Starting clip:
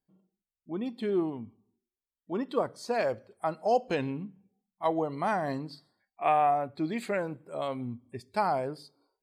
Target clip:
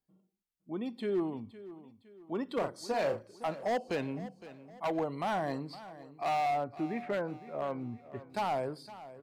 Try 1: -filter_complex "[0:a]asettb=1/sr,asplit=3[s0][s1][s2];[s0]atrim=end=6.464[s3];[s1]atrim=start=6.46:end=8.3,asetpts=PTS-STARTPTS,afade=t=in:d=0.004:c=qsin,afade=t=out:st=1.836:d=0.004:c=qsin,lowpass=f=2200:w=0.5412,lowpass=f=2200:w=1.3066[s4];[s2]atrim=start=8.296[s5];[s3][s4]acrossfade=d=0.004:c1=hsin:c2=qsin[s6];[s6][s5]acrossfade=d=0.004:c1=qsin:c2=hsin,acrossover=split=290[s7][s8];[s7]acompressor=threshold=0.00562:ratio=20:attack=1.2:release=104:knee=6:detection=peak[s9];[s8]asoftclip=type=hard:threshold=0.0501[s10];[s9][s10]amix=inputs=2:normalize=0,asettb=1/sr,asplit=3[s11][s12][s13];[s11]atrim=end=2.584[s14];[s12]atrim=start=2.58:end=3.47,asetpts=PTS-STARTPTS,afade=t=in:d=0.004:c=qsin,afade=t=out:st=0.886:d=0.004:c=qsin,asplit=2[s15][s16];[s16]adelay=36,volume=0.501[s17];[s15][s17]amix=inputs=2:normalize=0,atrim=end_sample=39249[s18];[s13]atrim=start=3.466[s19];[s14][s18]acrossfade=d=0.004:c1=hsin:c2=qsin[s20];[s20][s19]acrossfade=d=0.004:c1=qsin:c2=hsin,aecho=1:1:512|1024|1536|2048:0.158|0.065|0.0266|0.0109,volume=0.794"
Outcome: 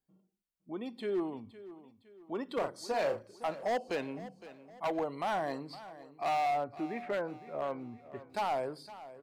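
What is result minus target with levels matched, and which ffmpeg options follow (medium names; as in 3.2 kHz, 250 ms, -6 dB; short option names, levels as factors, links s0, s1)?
compression: peak gain reduction +10.5 dB
-filter_complex "[0:a]asettb=1/sr,asplit=3[s0][s1][s2];[s0]atrim=end=6.464[s3];[s1]atrim=start=6.46:end=8.3,asetpts=PTS-STARTPTS,afade=t=in:d=0.004:c=qsin,afade=t=out:st=1.836:d=0.004:c=qsin,lowpass=f=2200:w=0.5412,lowpass=f=2200:w=1.3066[s4];[s2]atrim=start=8.296[s5];[s3][s4]acrossfade=d=0.004:c1=hsin:c2=qsin[s6];[s6][s5]acrossfade=d=0.004:c1=qsin:c2=hsin,acrossover=split=290[s7][s8];[s7]acompressor=threshold=0.0211:ratio=20:attack=1.2:release=104:knee=6:detection=peak[s9];[s8]asoftclip=type=hard:threshold=0.0501[s10];[s9][s10]amix=inputs=2:normalize=0,asettb=1/sr,asplit=3[s11][s12][s13];[s11]atrim=end=2.584[s14];[s12]atrim=start=2.58:end=3.47,asetpts=PTS-STARTPTS,afade=t=in:d=0.004:c=qsin,afade=t=out:st=0.886:d=0.004:c=qsin,asplit=2[s15][s16];[s16]adelay=36,volume=0.501[s17];[s15][s17]amix=inputs=2:normalize=0,atrim=end_sample=39249[s18];[s13]atrim=start=3.466[s19];[s14][s18]acrossfade=d=0.004:c1=hsin:c2=qsin[s20];[s20][s19]acrossfade=d=0.004:c1=qsin:c2=hsin,aecho=1:1:512|1024|1536|2048:0.158|0.065|0.0266|0.0109,volume=0.794"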